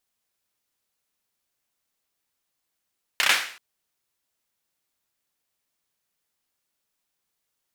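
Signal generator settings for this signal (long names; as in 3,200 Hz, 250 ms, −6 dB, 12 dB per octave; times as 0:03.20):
synth clap length 0.38 s, apart 31 ms, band 2,000 Hz, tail 0.49 s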